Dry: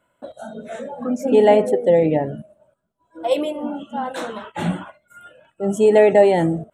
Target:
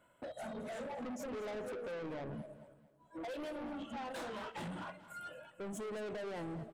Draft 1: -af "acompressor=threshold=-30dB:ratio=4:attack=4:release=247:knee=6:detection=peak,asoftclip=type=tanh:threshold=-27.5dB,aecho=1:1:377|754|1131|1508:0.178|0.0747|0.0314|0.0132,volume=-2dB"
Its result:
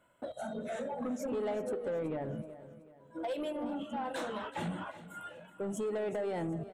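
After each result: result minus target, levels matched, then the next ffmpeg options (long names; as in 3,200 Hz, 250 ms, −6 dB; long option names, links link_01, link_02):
echo 156 ms late; soft clipping: distortion −9 dB
-af "acompressor=threshold=-30dB:ratio=4:attack=4:release=247:knee=6:detection=peak,asoftclip=type=tanh:threshold=-27.5dB,aecho=1:1:221|442|663|884:0.178|0.0747|0.0314|0.0132,volume=-2dB"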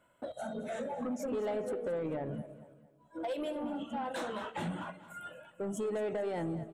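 soft clipping: distortion −9 dB
-af "acompressor=threshold=-30dB:ratio=4:attack=4:release=247:knee=6:detection=peak,asoftclip=type=tanh:threshold=-38.5dB,aecho=1:1:221|442|663|884:0.178|0.0747|0.0314|0.0132,volume=-2dB"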